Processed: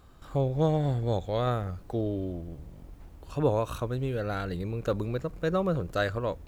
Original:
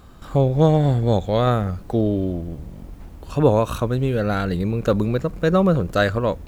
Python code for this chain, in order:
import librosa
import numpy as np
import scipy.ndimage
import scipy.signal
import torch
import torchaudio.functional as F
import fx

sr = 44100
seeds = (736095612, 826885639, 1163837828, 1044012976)

y = fx.peak_eq(x, sr, hz=210.0, db=-6.5, octaves=0.36)
y = F.gain(torch.from_numpy(y), -9.0).numpy()